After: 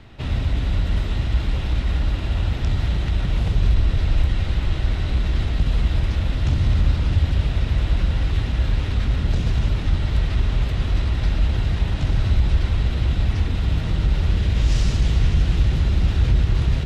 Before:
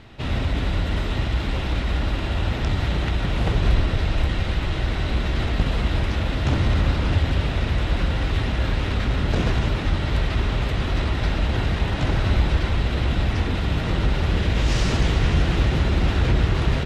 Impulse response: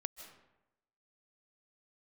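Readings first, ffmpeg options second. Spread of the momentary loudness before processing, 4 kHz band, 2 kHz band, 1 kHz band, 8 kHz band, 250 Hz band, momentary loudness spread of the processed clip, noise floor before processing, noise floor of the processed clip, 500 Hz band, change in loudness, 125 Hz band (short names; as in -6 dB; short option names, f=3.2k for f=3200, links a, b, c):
4 LU, -3.5 dB, -5.5 dB, -6.5 dB, n/a, -3.0 dB, 4 LU, -26 dBFS, -25 dBFS, -6.0 dB, +1.0 dB, +2.0 dB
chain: -filter_complex "[0:a]acrossover=split=190|3000[a][b][c];[b]acompressor=threshold=-32dB:ratio=6[d];[a][d][c]amix=inputs=3:normalize=0,asplit=2[e][f];[1:a]atrim=start_sample=2205,lowshelf=f=170:g=10[g];[f][g]afir=irnorm=-1:irlink=0,volume=-0.5dB[h];[e][h]amix=inputs=2:normalize=0,alimiter=level_in=1dB:limit=-1dB:release=50:level=0:latency=1,volume=-7.5dB"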